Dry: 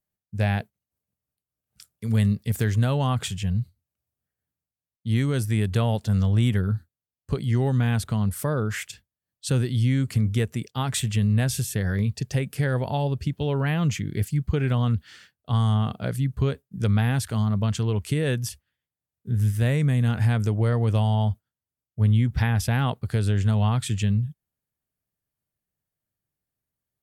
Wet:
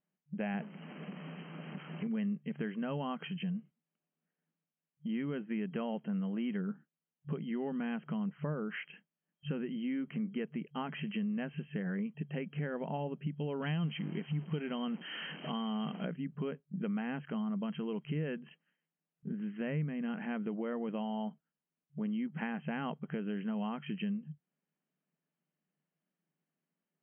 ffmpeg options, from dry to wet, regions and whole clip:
ffmpeg -i in.wav -filter_complex "[0:a]asettb=1/sr,asplit=3[link_01][link_02][link_03];[link_01]atrim=end=0.544[link_04];[link_02]atrim=start=0.54:end=2.07,asetpts=PTS-STARTPTS,afade=type=in:duration=0.004:curve=qsin,afade=type=out:start_time=1.526:duration=0.004:curve=qsin,aeval=exprs='val(0)+0.5*0.0178*sgn(val(0))':channel_layout=same,equalizer=frequency=100:width=1.3:gain=8.5[link_05];[link_03]atrim=start=2.066[link_06];[link_04][link_05]acrossfade=duration=0.004:curve1=hsin:curve2=qsin[link_07];[link_07][link_06]acrossfade=duration=0.004:curve1=qsin:curve2=hsin,asettb=1/sr,asplit=3[link_08][link_09][link_10];[link_08]atrim=end=13.624[link_11];[link_09]atrim=start=13.62:end=16.05,asetpts=PTS-STARTPTS,afade=type=in:duration=0.004:curve=qsin,afade=type=out:start_time=2.426:duration=0.004:curve=qsin,aeval=exprs='val(0)+0.5*0.0158*sgn(val(0))':channel_layout=same,equalizer=frequency=3300:width=3.8:gain=11,acrusher=bits=8:dc=4:mix=0:aa=0.000001[link_12];[link_10]atrim=start=16.046[link_13];[link_11][link_12]acrossfade=duration=0.004:curve1=hsin:curve2=qsin[link_14];[link_14][link_13]acrossfade=duration=0.004:curve1=qsin:curve2=hsin,afftfilt=real='re*between(b*sr/4096,150,3200)':imag='im*between(b*sr/4096,150,3200)':win_size=4096:overlap=0.75,lowshelf=frequency=250:gain=8.5,acompressor=threshold=-40dB:ratio=2.5" out.wav

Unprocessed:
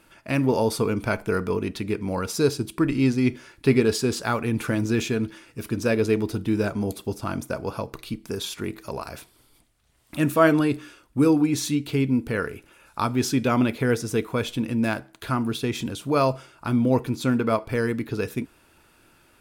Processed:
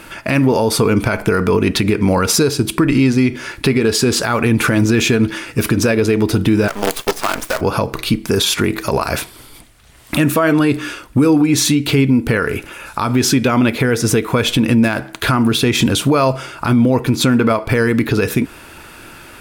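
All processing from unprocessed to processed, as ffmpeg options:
ffmpeg -i in.wav -filter_complex "[0:a]asettb=1/sr,asplit=3[link_01][link_02][link_03];[link_01]atrim=end=6.684[link_04];[link_02]atrim=start=6.68:end=7.61,asetpts=PTS-STARTPTS,afade=type=in:duration=0.004:curve=qsin,afade=type=out:start_time=0.926:duration=0.004:curve=qsin,highpass=510,highshelf=frequency=11000:gain=-4,acrusher=bits=6:dc=4:mix=0:aa=0.000001[link_05];[link_03]atrim=start=7.606[link_06];[link_04][link_05]acrossfade=duration=0.004:curve1=hsin:curve2=qsin[link_07];[link_07][link_06]acrossfade=duration=0.004:curve1=qsin:curve2=hsin,equalizer=frequency=1900:width_type=o:width=1.5:gain=3,acompressor=threshold=-27dB:ratio=6,alimiter=level_in=23dB:limit=-1dB:release=50:level=0:latency=1,volume=-4dB" out.wav

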